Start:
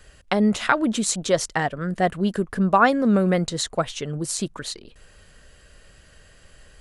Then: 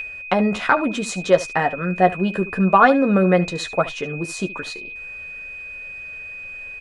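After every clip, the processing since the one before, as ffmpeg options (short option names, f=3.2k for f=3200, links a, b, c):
-filter_complex "[0:a]asplit=2[a][b];[b]highpass=f=720:p=1,volume=8dB,asoftclip=type=tanh:threshold=-1.5dB[c];[a][c]amix=inputs=2:normalize=0,lowpass=f=1.1k:p=1,volume=-6dB,aeval=exprs='val(0)+0.0447*sin(2*PI*2500*n/s)':c=same,asplit=2[d][e];[e]aecho=0:1:11|73:0.473|0.15[f];[d][f]amix=inputs=2:normalize=0,volume=3.5dB"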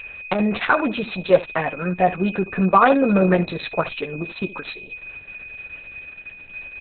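-ar 48000 -c:a libopus -b:a 6k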